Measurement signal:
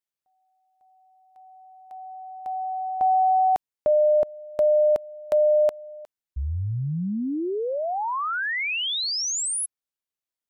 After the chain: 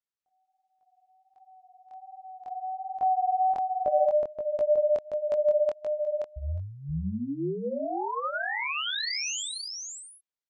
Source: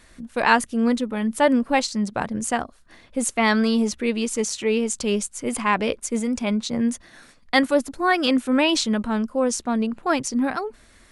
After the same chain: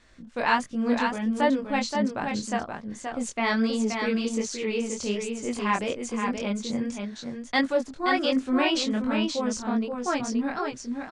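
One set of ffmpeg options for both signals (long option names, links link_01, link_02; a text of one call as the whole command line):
ffmpeg -i in.wav -filter_complex "[0:a]lowpass=frequency=7300:width=0.5412,lowpass=frequency=7300:width=1.3066,flanger=delay=18.5:depth=6.9:speed=1.3,asplit=2[link_01][link_02];[link_02]aecho=0:1:526:0.562[link_03];[link_01][link_03]amix=inputs=2:normalize=0,volume=-2.5dB" out.wav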